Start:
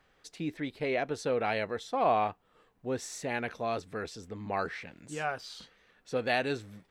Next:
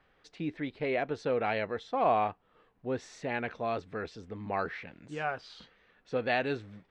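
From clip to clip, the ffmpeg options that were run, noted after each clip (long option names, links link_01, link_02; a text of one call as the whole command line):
ffmpeg -i in.wav -af "lowpass=3500" out.wav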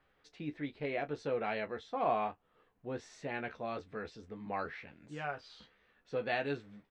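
ffmpeg -i in.wav -af "aecho=1:1:14|34:0.473|0.141,volume=-6dB" out.wav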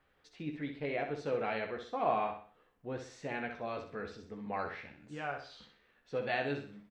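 ffmpeg -i in.wav -af "aecho=1:1:63|126|189|252:0.422|0.16|0.0609|0.0231" out.wav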